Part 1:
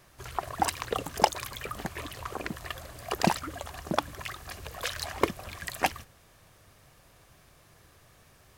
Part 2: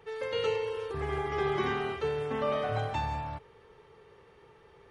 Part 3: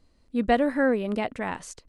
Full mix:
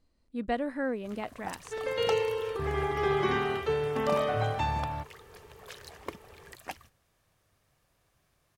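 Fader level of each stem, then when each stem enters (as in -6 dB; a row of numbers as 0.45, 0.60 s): -13.5, +2.5, -9.0 dB; 0.85, 1.65, 0.00 s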